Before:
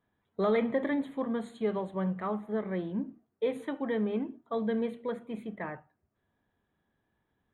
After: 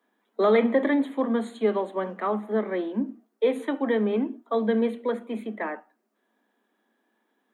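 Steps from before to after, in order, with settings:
Butterworth high-pass 210 Hz 96 dB per octave
level +7.5 dB

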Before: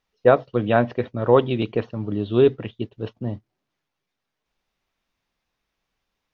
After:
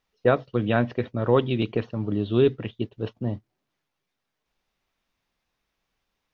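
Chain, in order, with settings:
dynamic equaliser 710 Hz, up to −7 dB, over −28 dBFS, Q 0.73

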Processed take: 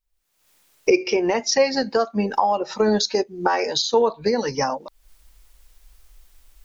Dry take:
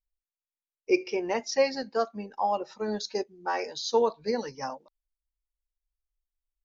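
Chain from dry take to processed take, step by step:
camcorder AGC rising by 61 dB per second
0:03.82–0:04.26: parametric band 5,300 Hz −9 dB 0.56 octaves
level +5.5 dB

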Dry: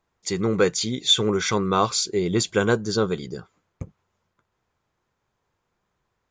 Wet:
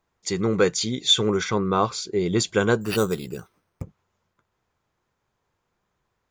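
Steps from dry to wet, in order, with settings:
0:01.43–0:02.19: high-shelf EQ 2,600 Hz → 3,500 Hz −10.5 dB
0:02.81–0:03.82: bad sample-rate conversion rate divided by 6×, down none, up hold

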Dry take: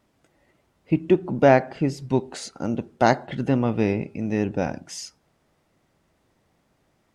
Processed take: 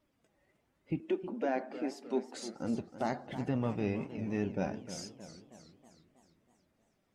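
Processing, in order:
spectral magnitudes quantised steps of 15 dB
0:01.00–0:02.35: elliptic high-pass filter 220 Hz, stop band 40 dB
brickwall limiter −13.5 dBFS, peak gain reduction 9 dB
flanger 1.2 Hz, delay 3.1 ms, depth 2.4 ms, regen +71%
feedback echo with a swinging delay time 315 ms, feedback 54%, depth 179 cents, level −12.5 dB
level −5 dB

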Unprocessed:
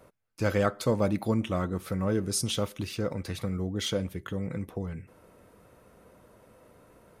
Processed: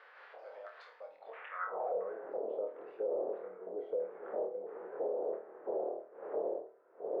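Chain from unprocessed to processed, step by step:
wind on the microphone 430 Hz −27 dBFS
downward compressor 10 to 1, threshold −27 dBFS, peak gain reduction 13.5 dB
high-pass filter 140 Hz 24 dB per octave
bass and treble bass 0 dB, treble −15 dB
auto-filter band-pass square 1.5 Hz 660–1,600 Hz
low shelf with overshoot 360 Hz −8.5 dB, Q 3
flutter between parallel walls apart 4.5 metres, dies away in 0.33 s
band-pass filter sweep 4,600 Hz → 340 Hz, 0:01.18–0:02.16
brickwall limiter −36 dBFS, peak gain reduction 9 dB
level +8.5 dB

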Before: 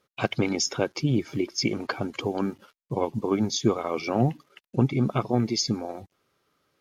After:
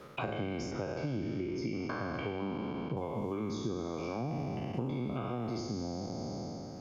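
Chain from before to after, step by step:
peak hold with a decay on every bin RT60 1.80 s
0:00.71–0:02.97: low-pass filter 3,800 Hz 12 dB per octave
downward compressor 3 to 1, threshold −37 dBFS, peak gain reduction 17.5 dB
high-shelf EQ 2,100 Hz −11 dB
multiband upward and downward compressor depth 70%

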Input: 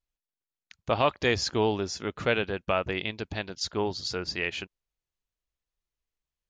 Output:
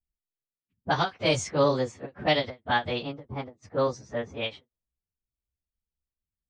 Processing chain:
phase-vocoder pitch shift without resampling +4.5 semitones
low-pass that shuts in the quiet parts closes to 330 Hz, open at −24 dBFS
every ending faded ahead of time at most 310 dB per second
level +4.5 dB

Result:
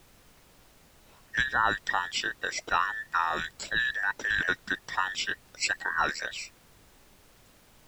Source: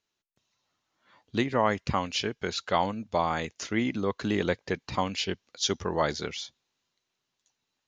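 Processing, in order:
frequency inversion band by band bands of 2,000 Hz
background noise pink −57 dBFS
level −1 dB

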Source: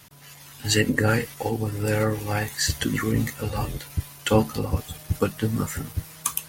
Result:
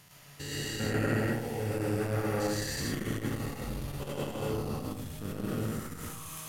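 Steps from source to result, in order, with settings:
spectrum averaged block by block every 400 ms
comb and all-pass reverb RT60 0.79 s, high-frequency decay 0.5×, pre-delay 65 ms, DRR −5 dB
saturating transformer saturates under 370 Hz
level −7.5 dB

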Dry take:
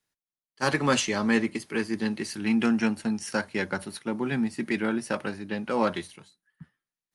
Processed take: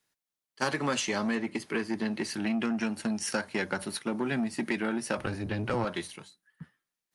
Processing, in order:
0:05.17–0:05.85: sub-octave generator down 1 octave, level +4 dB
low-shelf EQ 120 Hz −7 dB
downward compressor, threshold −29 dBFS, peak gain reduction 11 dB
0:01.35–0:02.81: high-shelf EQ 5,000 Hz −7 dB
saturating transformer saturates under 860 Hz
level +4 dB

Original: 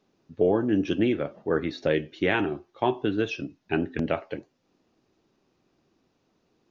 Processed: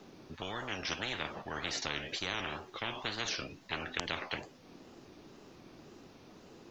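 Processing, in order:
tape wow and flutter 110 cents
every bin compressed towards the loudest bin 10 to 1
level −4 dB

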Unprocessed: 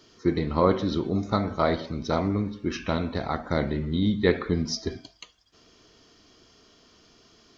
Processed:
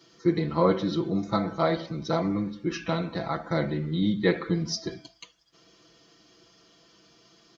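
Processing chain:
high-pass filter 65 Hz
comb filter 6 ms, depth 99%
level −4 dB

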